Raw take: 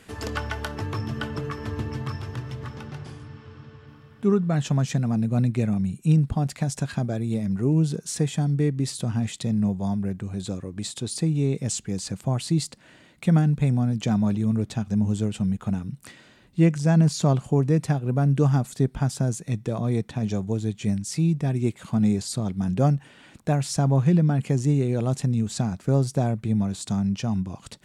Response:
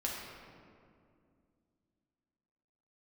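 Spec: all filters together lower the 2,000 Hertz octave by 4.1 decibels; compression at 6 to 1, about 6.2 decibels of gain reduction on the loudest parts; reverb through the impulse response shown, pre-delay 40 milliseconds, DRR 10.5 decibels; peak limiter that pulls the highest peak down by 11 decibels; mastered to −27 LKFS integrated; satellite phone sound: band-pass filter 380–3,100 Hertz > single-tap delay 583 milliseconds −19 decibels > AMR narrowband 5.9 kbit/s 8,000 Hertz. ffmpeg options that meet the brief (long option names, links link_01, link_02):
-filter_complex "[0:a]equalizer=frequency=2000:width_type=o:gain=-5,acompressor=threshold=-21dB:ratio=6,alimiter=level_in=0.5dB:limit=-24dB:level=0:latency=1,volume=-0.5dB,asplit=2[link_01][link_02];[1:a]atrim=start_sample=2205,adelay=40[link_03];[link_02][link_03]afir=irnorm=-1:irlink=0,volume=-14dB[link_04];[link_01][link_04]amix=inputs=2:normalize=0,highpass=380,lowpass=3100,aecho=1:1:583:0.112,volume=16.5dB" -ar 8000 -c:a libopencore_amrnb -b:a 5900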